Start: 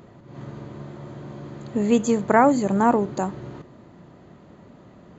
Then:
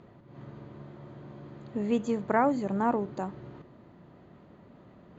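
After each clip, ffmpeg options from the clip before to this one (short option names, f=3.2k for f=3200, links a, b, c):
-af "lowpass=4.2k,areverse,acompressor=mode=upward:threshold=-39dB:ratio=2.5,areverse,volume=-8.5dB"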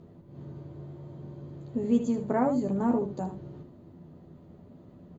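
-filter_complex "[0:a]equalizer=f=1.8k:t=o:w=2.9:g=-14.5,asplit=2[a][b];[b]aecho=0:1:12|77:0.631|0.376[c];[a][c]amix=inputs=2:normalize=0,volume=3.5dB"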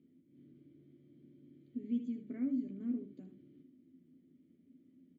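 -filter_complex "[0:a]asplit=3[a][b][c];[a]bandpass=f=270:t=q:w=8,volume=0dB[d];[b]bandpass=f=2.29k:t=q:w=8,volume=-6dB[e];[c]bandpass=f=3.01k:t=q:w=8,volume=-9dB[f];[d][e][f]amix=inputs=3:normalize=0,volume=-3.5dB"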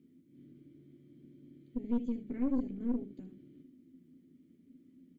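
-af "aeval=exprs='(tanh(44.7*val(0)+0.7)-tanh(0.7))/44.7':c=same,equalizer=f=640:w=1.8:g=-4.5,volume=8dB"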